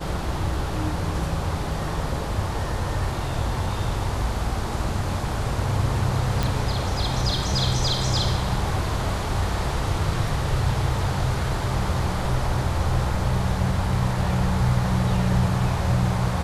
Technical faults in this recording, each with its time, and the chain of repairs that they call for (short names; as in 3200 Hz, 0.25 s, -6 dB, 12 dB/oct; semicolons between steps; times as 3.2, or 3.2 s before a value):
6.43 pop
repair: de-click